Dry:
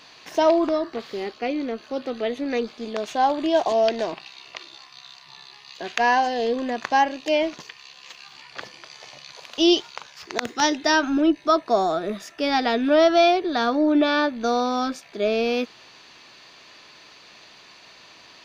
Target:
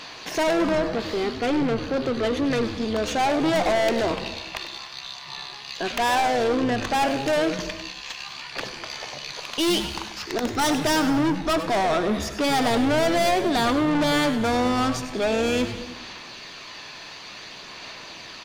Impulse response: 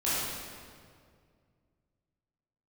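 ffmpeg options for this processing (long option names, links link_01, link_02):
-filter_complex "[0:a]aphaser=in_gain=1:out_gain=1:delay=1.2:decay=0.23:speed=0.56:type=sinusoidal,aeval=exprs='(tanh(25.1*val(0)+0.2)-tanh(0.2))/25.1':channel_layout=same,asplit=5[link_01][link_02][link_03][link_04][link_05];[link_02]adelay=98,afreqshift=-140,volume=-11dB[link_06];[link_03]adelay=196,afreqshift=-280,volume=-18.3dB[link_07];[link_04]adelay=294,afreqshift=-420,volume=-25.7dB[link_08];[link_05]adelay=392,afreqshift=-560,volume=-33dB[link_09];[link_01][link_06][link_07][link_08][link_09]amix=inputs=5:normalize=0,asplit=2[link_10][link_11];[1:a]atrim=start_sample=2205,afade=type=out:start_time=0.31:duration=0.01,atrim=end_sample=14112,asetrate=28224,aresample=44100[link_12];[link_11][link_12]afir=irnorm=-1:irlink=0,volume=-25dB[link_13];[link_10][link_13]amix=inputs=2:normalize=0,volume=7.5dB"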